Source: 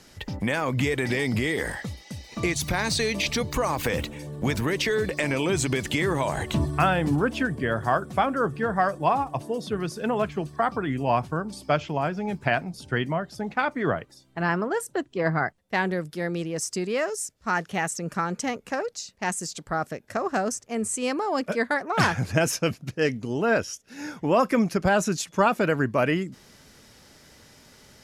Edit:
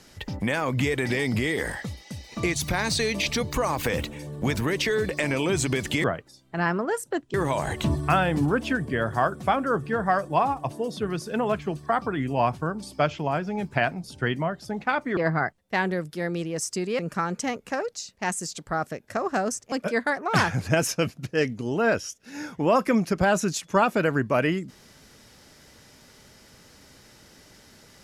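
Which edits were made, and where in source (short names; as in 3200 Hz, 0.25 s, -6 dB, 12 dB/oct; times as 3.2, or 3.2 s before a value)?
13.87–15.17 move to 6.04
16.99–17.99 cut
20.72–21.36 cut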